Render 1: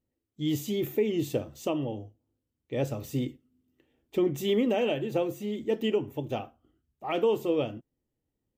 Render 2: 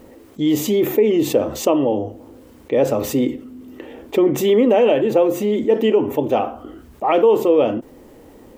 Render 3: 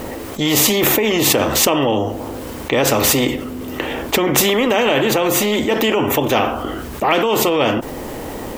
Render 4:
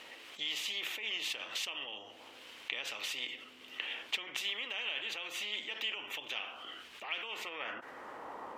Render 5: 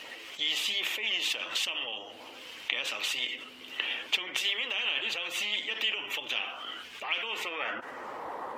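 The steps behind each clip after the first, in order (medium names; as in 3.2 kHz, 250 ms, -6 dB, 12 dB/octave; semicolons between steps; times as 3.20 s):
ten-band graphic EQ 125 Hz -6 dB, 250 Hz +6 dB, 500 Hz +9 dB, 1 kHz +9 dB, 2 kHz +4 dB; level flattener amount 50%
peak limiter -9.5 dBFS, peak gain reduction 6 dB; spectrum-flattening compressor 2:1; trim +8 dB
compression, threshold -18 dBFS, peak gain reduction 8.5 dB; band-pass sweep 2.9 kHz -> 1.1 kHz, 7.10–8.29 s; trim -7 dB
coarse spectral quantiser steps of 15 dB; hum notches 50/100/150/200 Hz; trim +7.5 dB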